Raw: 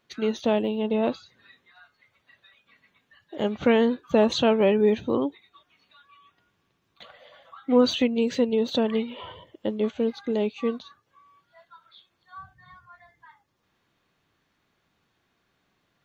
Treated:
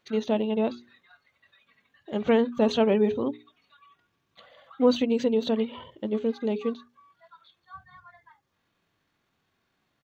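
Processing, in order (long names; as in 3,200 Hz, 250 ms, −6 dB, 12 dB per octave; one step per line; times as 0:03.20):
tempo change 1.6×
mains-hum notches 60/120/180/240/300/360/420 Hz
harmonic and percussive parts rebalanced percussive −5 dB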